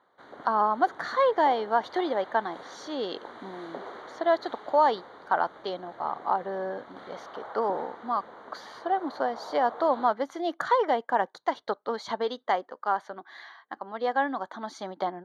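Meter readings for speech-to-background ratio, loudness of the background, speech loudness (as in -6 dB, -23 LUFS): 16.5 dB, -45.0 LUFS, -28.5 LUFS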